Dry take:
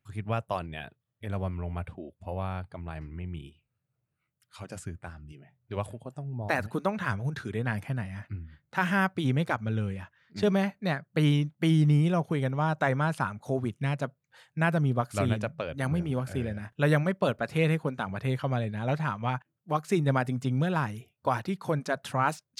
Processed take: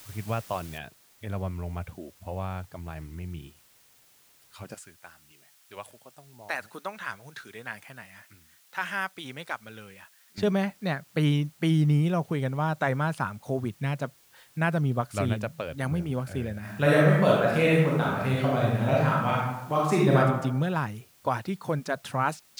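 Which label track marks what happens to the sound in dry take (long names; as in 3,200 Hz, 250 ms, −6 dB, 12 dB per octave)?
0.780000	0.780000	noise floor change −49 dB −60 dB
4.740000	10.380000	high-pass filter 1,300 Hz 6 dB per octave
16.600000	20.180000	thrown reverb, RT60 0.97 s, DRR −5 dB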